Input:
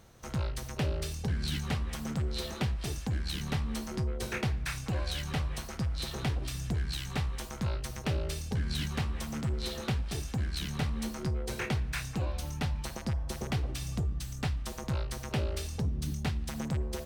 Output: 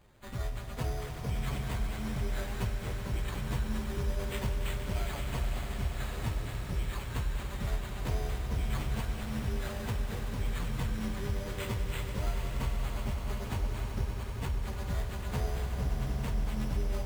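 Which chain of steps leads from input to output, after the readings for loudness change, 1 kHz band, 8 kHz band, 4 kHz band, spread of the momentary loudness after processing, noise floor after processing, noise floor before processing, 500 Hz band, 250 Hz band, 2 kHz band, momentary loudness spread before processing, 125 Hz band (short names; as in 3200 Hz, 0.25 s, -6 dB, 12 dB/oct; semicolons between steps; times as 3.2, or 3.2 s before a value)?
-1.0 dB, 0.0 dB, -5.0 dB, -5.5 dB, 2 LU, -39 dBFS, -42 dBFS, -0.5 dB, -2.5 dB, -2.0 dB, 2 LU, -1.5 dB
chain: inharmonic rescaling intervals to 120%; sample-rate reducer 5500 Hz, jitter 0%; vibrato 6.5 Hz 11 cents; on a send: swelling echo 95 ms, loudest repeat 5, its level -11 dB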